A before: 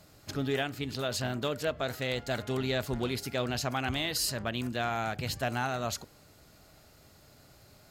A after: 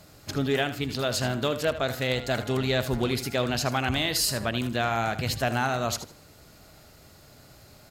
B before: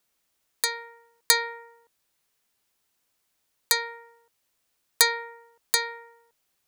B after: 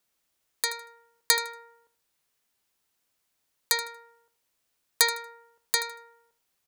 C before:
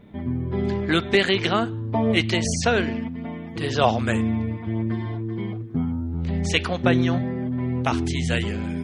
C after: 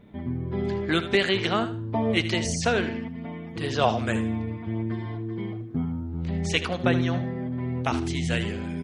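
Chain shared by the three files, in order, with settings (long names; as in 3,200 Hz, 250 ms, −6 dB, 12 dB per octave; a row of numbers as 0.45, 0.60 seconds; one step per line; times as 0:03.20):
repeating echo 78 ms, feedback 23%, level −12.5 dB
loudness normalisation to −27 LKFS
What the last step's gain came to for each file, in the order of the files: +5.0, −2.5, −3.0 decibels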